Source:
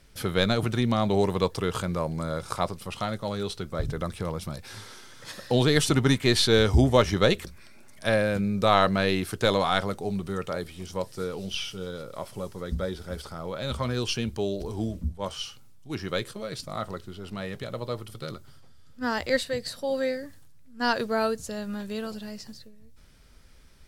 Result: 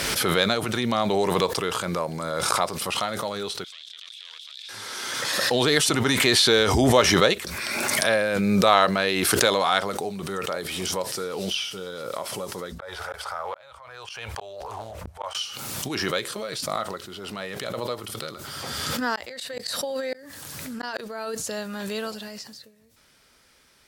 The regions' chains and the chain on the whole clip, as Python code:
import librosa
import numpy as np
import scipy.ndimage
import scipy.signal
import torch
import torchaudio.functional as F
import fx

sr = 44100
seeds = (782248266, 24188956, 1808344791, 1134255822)

y = fx.chain(x, sr, fx.self_delay(depth_ms=0.44),
    fx.ladder_bandpass(hz=3700.0, resonance_pct=75),
    fx.env_flatten(amount_pct=100), at=(3.64, 4.69))
y = fx.chain(y, sr, fx.curve_eq(hz=(100.0, 260.0, 550.0, 830.0, 1600.0, 2500.0, 3700.0), db=(0, -25, 1, 7, 4, 1, -5)),
    fx.gate_flip(shuts_db=-23.0, range_db=-38),
    fx.doppler_dist(depth_ms=0.88), at=(12.78, 15.35))
y = fx.chain(y, sr, fx.over_compress(threshold_db=-29.0, ratio=-0.5),
    fx.gate_flip(shuts_db=-20.0, range_db=-36), at=(19.15, 22.28))
y = fx.highpass(y, sr, hz=270.0, slope=6)
y = fx.low_shelf(y, sr, hz=350.0, db=-6.5)
y = fx.pre_swell(y, sr, db_per_s=22.0)
y = y * 10.0 ** (4.0 / 20.0)